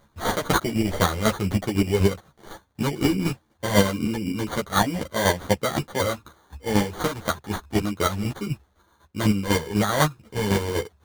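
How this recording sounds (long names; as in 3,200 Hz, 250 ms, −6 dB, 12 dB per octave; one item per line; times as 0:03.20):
chopped level 4 Hz, depth 60%, duty 25%
aliases and images of a low sample rate 2,600 Hz, jitter 0%
a shimmering, thickened sound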